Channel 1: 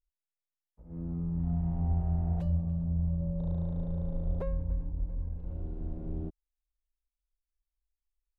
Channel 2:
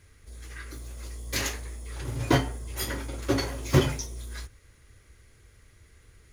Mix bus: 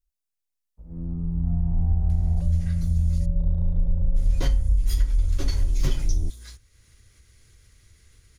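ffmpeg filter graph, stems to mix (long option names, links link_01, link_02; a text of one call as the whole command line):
ffmpeg -i stem1.wav -i stem2.wav -filter_complex "[0:a]asubboost=boost=6:cutoff=59,volume=-0.5dB[link_01];[1:a]acompressor=mode=upward:threshold=-42dB:ratio=2.5,equalizer=frequency=4300:width_type=o:width=2.3:gain=7.5,adelay=2100,volume=-12dB,asplit=3[link_02][link_03][link_04];[link_02]atrim=end=3.26,asetpts=PTS-STARTPTS,afade=type=out:start_time=3.256:duration=0.004:curve=hsin[link_05];[link_03]atrim=start=3.26:end=4.16,asetpts=PTS-STARTPTS,volume=0[link_06];[link_04]atrim=start=4.16,asetpts=PTS-STARTPTS,afade=type=in:duration=0.004:curve=hsin[link_07];[link_05][link_06][link_07]concat=n=3:v=0:a=1[link_08];[link_01][link_08]amix=inputs=2:normalize=0,bass=frequency=250:gain=7,treble=frequency=4000:gain=6,acompressor=threshold=-16dB:ratio=5" out.wav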